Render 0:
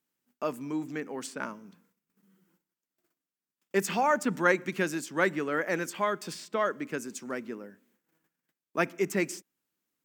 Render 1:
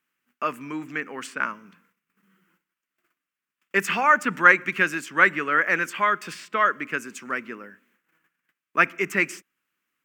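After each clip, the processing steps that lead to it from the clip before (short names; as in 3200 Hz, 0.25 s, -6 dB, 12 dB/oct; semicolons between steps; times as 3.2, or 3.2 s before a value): band shelf 1800 Hz +12 dB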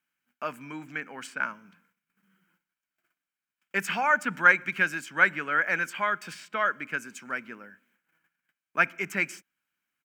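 comb 1.3 ms, depth 42%; gain -5 dB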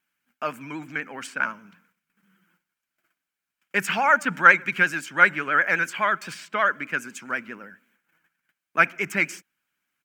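vibrato 12 Hz 77 cents; gain +4.5 dB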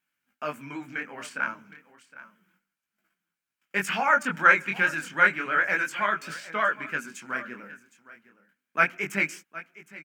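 echo 0.763 s -17.5 dB; chorus 0.31 Hz, delay 18.5 ms, depth 7.5 ms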